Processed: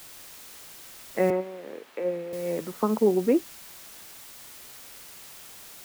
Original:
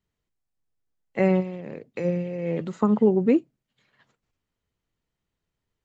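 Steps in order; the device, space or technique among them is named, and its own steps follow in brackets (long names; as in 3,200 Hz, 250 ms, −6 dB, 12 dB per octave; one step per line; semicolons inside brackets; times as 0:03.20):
wax cylinder (band-pass filter 280–2,000 Hz; tape wow and flutter; white noise bed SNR 16 dB)
0:01.30–0:02.33: three-way crossover with the lows and the highs turned down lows −19 dB, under 220 Hz, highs −16 dB, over 3,200 Hz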